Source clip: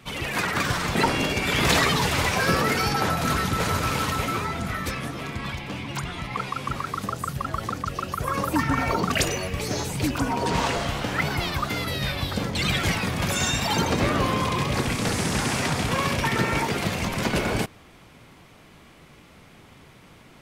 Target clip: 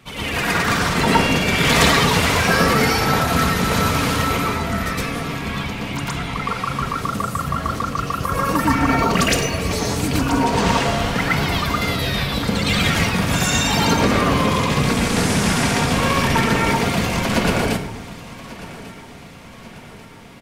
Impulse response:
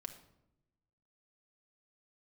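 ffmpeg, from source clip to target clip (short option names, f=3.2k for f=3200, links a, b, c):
-filter_complex "[0:a]aecho=1:1:1143|2286|3429|4572:0.126|0.0629|0.0315|0.0157,asplit=2[a][b];[1:a]atrim=start_sample=2205,adelay=114[c];[b][c]afir=irnorm=-1:irlink=0,volume=8.5dB[d];[a][d]amix=inputs=2:normalize=0"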